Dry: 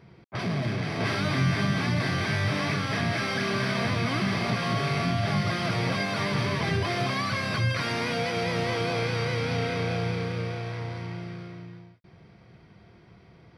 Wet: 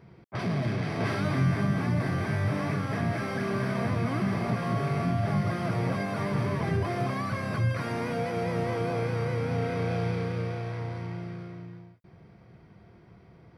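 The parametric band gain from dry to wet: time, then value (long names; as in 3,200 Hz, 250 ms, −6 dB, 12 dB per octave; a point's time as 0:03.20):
parametric band 3,900 Hz 2 octaves
0:00.85 −5.5 dB
0:01.66 −14.5 dB
0:09.51 −14.5 dB
0:10.03 −7.5 dB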